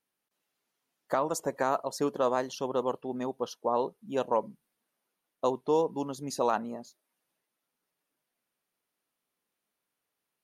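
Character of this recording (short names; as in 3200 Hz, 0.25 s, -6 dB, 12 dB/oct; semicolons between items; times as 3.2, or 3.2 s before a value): noise floor -86 dBFS; spectral tilt -4.5 dB/oct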